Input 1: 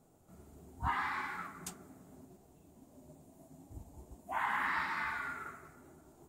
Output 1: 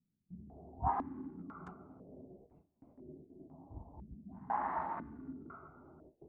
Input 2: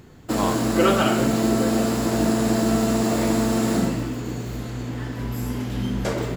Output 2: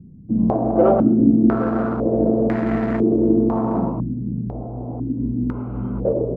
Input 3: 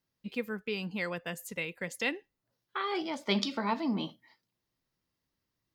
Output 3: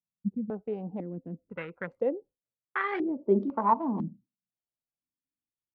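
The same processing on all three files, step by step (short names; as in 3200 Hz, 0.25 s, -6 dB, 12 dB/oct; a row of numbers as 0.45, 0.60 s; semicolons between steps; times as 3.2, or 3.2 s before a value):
Wiener smoothing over 25 samples; gate with hold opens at -51 dBFS; stepped low-pass 2 Hz 200–1900 Hz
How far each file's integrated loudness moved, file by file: -4.5, +3.0, +3.0 LU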